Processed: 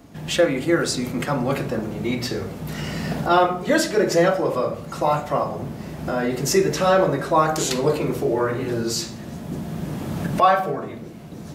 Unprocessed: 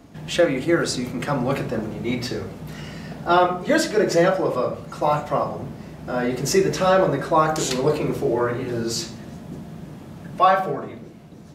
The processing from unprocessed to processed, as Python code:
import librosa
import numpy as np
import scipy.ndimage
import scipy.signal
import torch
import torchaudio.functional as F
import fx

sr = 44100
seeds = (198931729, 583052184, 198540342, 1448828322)

y = fx.recorder_agc(x, sr, target_db=-15.5, rise_db_per_s=9.9, max_gain_db=30)
y = fx.high_shelf(y, sr, hz=11000.0, db=7.0)